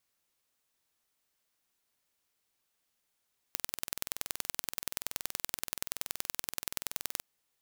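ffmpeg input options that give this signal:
ffmpeg -f lavfi -i "aevalsrc='0.596*eq(mod(n,2090),0)*(0.5+0.5*eq(mod(n,4180),0))':duration=3.68:sample_rate=44100" out.wav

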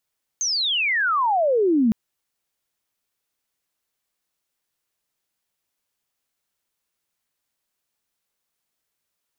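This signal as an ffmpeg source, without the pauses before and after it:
ffmpeg -f lavfi -i "aevalsrc='pow(10,(-20.5+6*t/1.51)/20)*sin(2*PI*6500*1.51/log(210/6500)*(exp(log(210/6500)*t/1.51)-1))':duration=1.51:sample_rate=44100" out.wav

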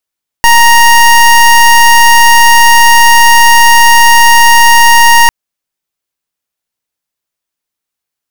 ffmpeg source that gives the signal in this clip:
ffmpeg -f lavfi -i "aevalsrc='0.708*(2*lt(mod(935*t,1),0.24)-1)':duration=4.85:sample_rate=44100" out.wav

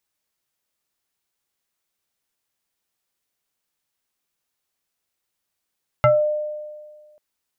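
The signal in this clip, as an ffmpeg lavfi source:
ffmpeg -f lavfi -i "aevalsrc='0.316*pow(10,-3*t/1.67)*sin(2*PI*603*t+1.7*pow(10,-3*t/0.25)*sin(2*PI*1.21*603*t))':duration=1.14:sample_rate=44100" out.wav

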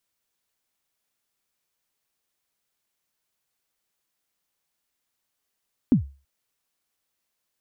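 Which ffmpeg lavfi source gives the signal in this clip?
ffmpeg -f lavfi -i "aevalsrc='0.316*pow(10,-3*t/0.33)*sin(2*PI*(290*0.109/log(69/290)*(exp(log(69/290)*min(t,0.109)/0.109)-1)+69*max(t-0.109,0)))':duration=0.33:sample_rate=44100" out.wav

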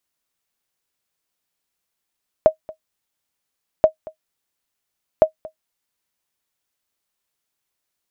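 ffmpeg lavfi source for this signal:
ffmpeg -f lavfi -i "aevalsrc='0.794*(sin(2*PI*630*mod(t,1.38))*exp(-6.91*mod(t,1.38)/0.1)+0.0794*sin(2*PI*630*max(mod(t,1.38)-0.23,0))*exp(-6.91*max(mod(t,1.38)-0.23,0)/0.1))':duration=4.14:sample_rate=44100" out.wav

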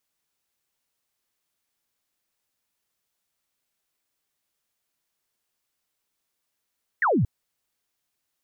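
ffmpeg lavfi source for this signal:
ffmpeg -f lavfi -i "aevalsrc='0.126*clip(t/0.002,0,1)*clip((0.23-t)/0.002,0,1)*sin(2*PI*2000*0.23/log(90/2000)*(exp(log(90/2000)*t/0.23)-1))':duration=0.23:sample_rate=44100" out.wav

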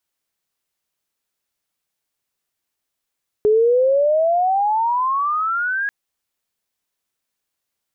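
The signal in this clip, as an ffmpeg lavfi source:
ffmpeg -f lavfi -i "aevalsrc='pow(10,(-11-8*t/2.44)/20)*sin(2*PI*417*2.44/(24*log(2)/12)*(exp(24*log(2)/12*t/2.44)-1))':duration=2.44:sample_rate=44100" out.wav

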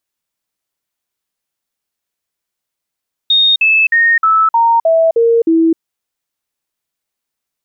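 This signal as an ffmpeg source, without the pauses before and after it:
ffmpeg -f lavfi -i "aevalsrc='0.447*clip(min(mod(t,0.31),0.26-mod(t,0.31))/0.005,0,1)*sin(2*PI*3700*pow(2,-floor(t/0.31)/2)*mod(t,0.31))':duration=2.48:sample_rate=44100" out.wav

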